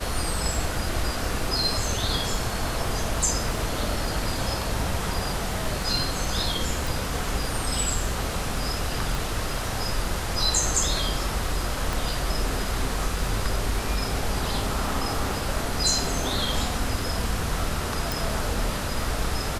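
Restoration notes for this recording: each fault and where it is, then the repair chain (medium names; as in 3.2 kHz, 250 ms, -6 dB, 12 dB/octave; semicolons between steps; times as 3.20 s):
crackle 27 per s -33 dBFS
6.87 s: pop
9.15 s: pop
11.93 s: pop
18.12 s: pop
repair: de-click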